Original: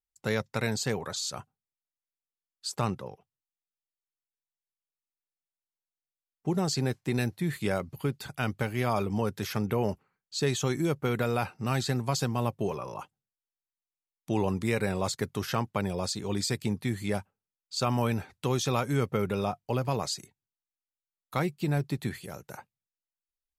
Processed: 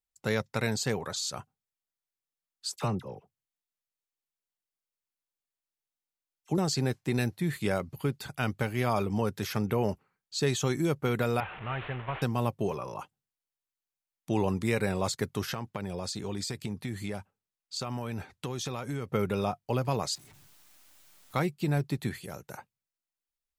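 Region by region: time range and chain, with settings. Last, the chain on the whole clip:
0:02.76–0:06.58: dynamic equaliser 1,500 Hz, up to −4 dB, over −44 dBFS, Q 0.71 + all-pass dispersion lows, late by 47 ms, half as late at 1,400 Hz
0:11.40–0:12.22: linear delta modulator 16 kbit/s, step −34.5 dBFS + parametric band 230 Hz −14 dB 1.6 octaves
0:15.52–0:19.12: downward compressor, threshold −30 dBFS + high-shelf EQ 12,000 Hz −4 dB
0:20.15–0:21.34: sign of each sample alone + notch filter 470 Hz, Q 6.6 + comb filter 6.7 ms, depth 34%
whole clip: no processing

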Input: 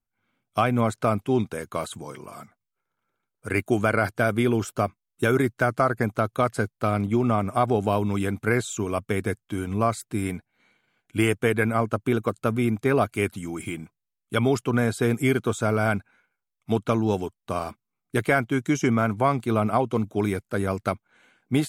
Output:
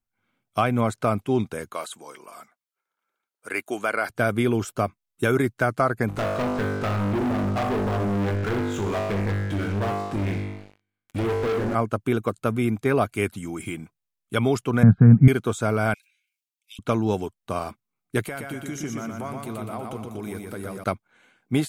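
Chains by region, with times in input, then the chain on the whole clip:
0:01.73–0:04.10: high-pass filter 250 Hz + low-shelf EQ 440 Hz −9.5 dB
0:06.08–0:11.75: treble cut that deepens with the level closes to 700 Hz, closed at −18 dBFS + tuned comb filter 50 Hz, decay 0.97 s, mix 90% + leveller curve on the samples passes 5
0:14.83–0:15.28: low-pass filter 1,500 Hz 24 dB per octave + low shelf with overshoot 260 Hz +12 dB, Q 3
0:15.94–0:16.79: elliptic high-pass filter 2,500 Hz, stop band 70 dB + level that may fall only so fast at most 74 dB per second
0:18.23–0:20.84: high-shelf EQ 8,600 Hz +11 dB + downward compressor 3 to 1, threshold −33 dBFS + repeating echo 120 ms, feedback 49%, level −3.5 dB
whole clip: no processing

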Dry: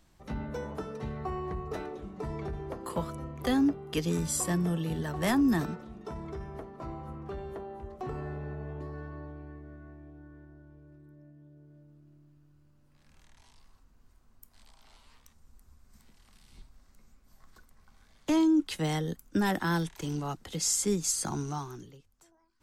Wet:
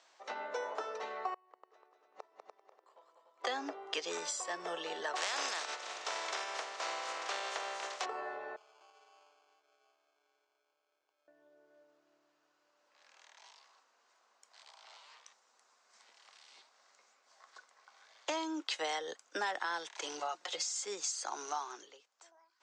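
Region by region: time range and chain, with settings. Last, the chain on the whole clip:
0:01.34–0:03.44: gate with flip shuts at −33 dBFS, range −31 dB + linear-phase brick-wall high-pass 180 Hz + echo machine with several playback heads 98 ms, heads second and third, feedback 42%, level −6 dB
0:05.15–0:08.04: compressing power law on the bin magnitudes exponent 0.38 + upward compression, threshold −42 dBFS
0:08.56–0:11.28: first difference + sample-rate reduction 1,900 Hz
0:20.19–0:20.76: mains-hum notches 60/120/180/240/300 Hz + comb filter 5.6 ms, depth 73% + downward compressor, threshold −31 dBFS
whole clip: high-pass filter 540 Hz 24 dB per octave; downward compressor 6 to 1, threshold −38 dBFS; Butterworth low-pass 7,200 Hz 36 dB per octave; level +5 dB

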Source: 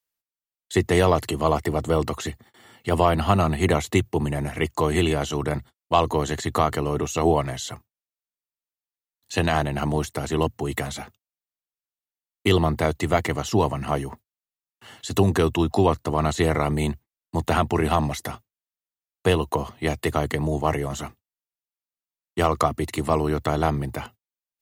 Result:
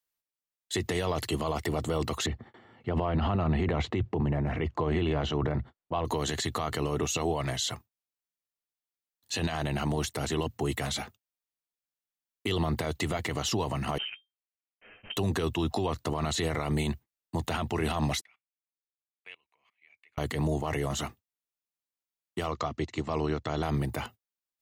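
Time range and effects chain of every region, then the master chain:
0:02.26–0:06.05: transient designer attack 0 dB, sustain +9 dB + head-to-tape spacing loss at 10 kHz 36 dB
0:13.98–0:15.17: lower of the sound and its delayed copy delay 9.7 ms + Chebyshev high-pass with heavy ripple 220 Hz, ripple 6 dB + voice inversion scrambler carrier 3,400 Hz
0:18.21–0:20.18: output level in coarse steps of 20 dB + resonant band-pass 2,300 Hz, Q 13
0:22.51–0:23.63: Butterworth low-pass 7,200 Hz 48 dB per octave + expander for the loud parts, over −37 dBFS
whole clip: dynamic equaliser 3,700 Hz, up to +6 dB, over −42 dBFS, Q 0.88; brickwall limiter −17.5 dBFS; level −2 dB

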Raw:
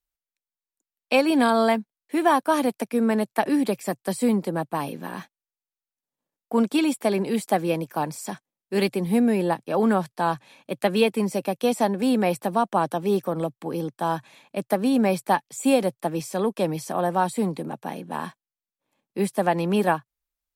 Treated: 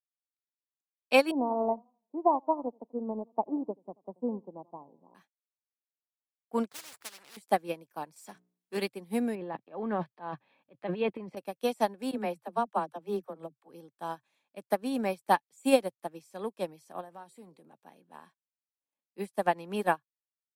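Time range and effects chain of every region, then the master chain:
0:01.31–0:05.15: elliptic low-pass filter 1,000 Hz + feedback echo with a swinging delay time 84 ms, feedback 35%, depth 107 cents, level −15.5 dB
0:06.71–0:07.37: running median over 15 samples + every bin compressed towards the loudest bin 10 to 1
0:08.16–0:08.77: mains-hum notches 60/120/180/240/300/360/420 Hz + power curve on the samples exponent 0.7
0:09.35–0:11.37: notch filter 1,400 Hz, Q 9.5 + transient designer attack −4 dB, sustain +12 dB + high-frequency loss of the air 390 metres
0:12.11–0:13.69: high-shelf EQ 2,800 Hz −7 dB + all-pass dispersion lows, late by 41 ms, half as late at 310 Hz
0:17.01–0:17.65: downward compressor 3 to 1, threshold −25 dBFS + hum removal 126.4 Hz, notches 5
whole clip: high-pass filter 250 Hz 6 dB per octave; expander for the loud parts 2.5 to 1, over −32 dBFS

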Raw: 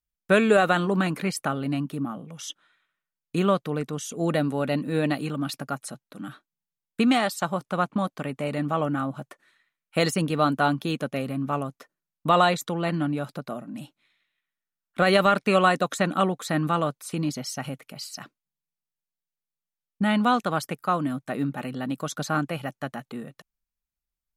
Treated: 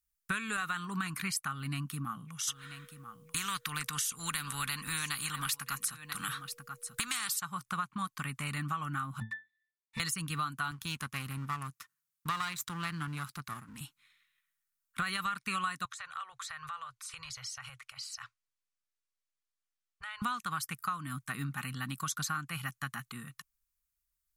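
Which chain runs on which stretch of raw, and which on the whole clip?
0:02.47–0:07.39: steady tone 480 Hz −37 dBFS + single-tap delay 987 ms −23.5 dB + every bin compressed towards the loudest bin 2 to 1
0:09.20–0:10.00: high shelf with overshoot 1,600 Hz +8 dB, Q 1.5 + leveller curve on the samples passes 5 + resonances in every octave A, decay 0.23 s
0:10.71–0:13.81: gain on one half-wave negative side −12 dB + high-pass filter 91 Hz
0:15.85–0:20.22: Chebyshev band-stop filter 110–500 Hz, order 3 + downward compressor 4 to 1, threshold −38 dBFS + high-frequency loss of the air 77 metres
whole clip: drawn EQ curve 120 Hz 0 dB, 590 Hz −27 dB, 1,100 Hz +2 dB, 3,400 Hz 0 dB, 9,300 Hz +8 dB; downward compressor 6 to 1, threshold −32 dBFS

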